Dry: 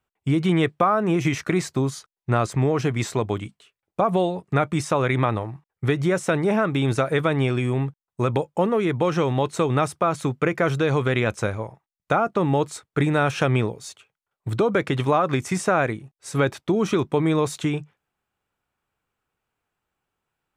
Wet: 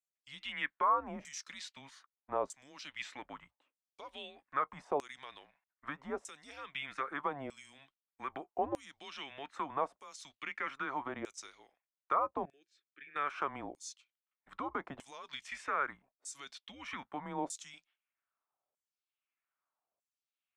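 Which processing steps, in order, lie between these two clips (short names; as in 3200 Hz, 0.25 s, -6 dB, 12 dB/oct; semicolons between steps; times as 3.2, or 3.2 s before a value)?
12.45–13.16 vowel filter e; frequency shift -140 Hz; LFO band-pass saw down 0.8 Hz 560–7900 Hz; gain -5 dB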